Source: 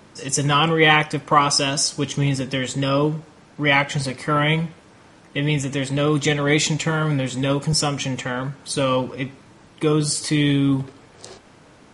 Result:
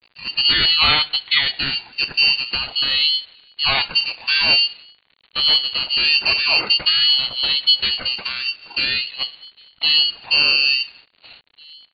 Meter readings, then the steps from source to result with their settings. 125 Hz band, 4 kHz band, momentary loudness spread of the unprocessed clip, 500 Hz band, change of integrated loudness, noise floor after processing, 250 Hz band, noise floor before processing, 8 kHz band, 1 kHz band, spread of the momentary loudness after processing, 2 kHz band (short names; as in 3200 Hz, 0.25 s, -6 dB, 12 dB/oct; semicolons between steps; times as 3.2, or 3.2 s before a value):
-19.0 dB, +12.0 dB, 9 LU, -15.0 dB, +4.5 dB, -60 dBFS, -19.0 dB, -50 dBFS, under -40 dB, -7.5 dB, 9 LU, +4.0 dB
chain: gate -44 dBFS, range -9 dB; bell 160 Hz +10 dB 0.73 oct; requantised 8-bit, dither none; outdoor echo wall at 300 m, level -27 dB; inverted band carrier 3800 Hz; ring modulator with a swept carrier 760 Hz, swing 20%, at 0.47 Hz